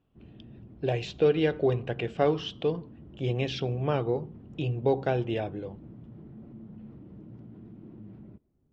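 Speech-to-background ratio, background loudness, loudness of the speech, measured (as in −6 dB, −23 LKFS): 19.5 dB, −48.5 LKFS, −29.0 LKFS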